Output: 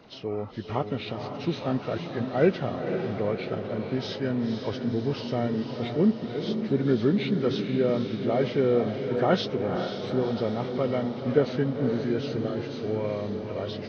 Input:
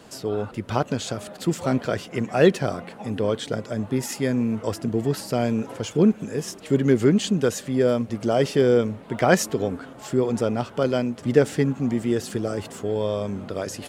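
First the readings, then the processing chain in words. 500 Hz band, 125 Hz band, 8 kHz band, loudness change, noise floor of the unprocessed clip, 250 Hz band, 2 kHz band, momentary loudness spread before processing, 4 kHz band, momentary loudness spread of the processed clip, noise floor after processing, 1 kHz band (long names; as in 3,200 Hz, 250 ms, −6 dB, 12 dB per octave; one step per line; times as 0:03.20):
−4.0 dB, −3.5 dB, below −20 dB, −4.0 dB, −43 dBFS, −3.5 dB, −6.0 dB, 10 LU, −3.0 dB, 8 LU, −37 dBFS, −3.5 dB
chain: hearing-aid frequency compression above 1,100 Hz 1.5 to 1
feedback delay with all-pass diffusion 503 ms, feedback 59%, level −6.5 dB
level −5 dB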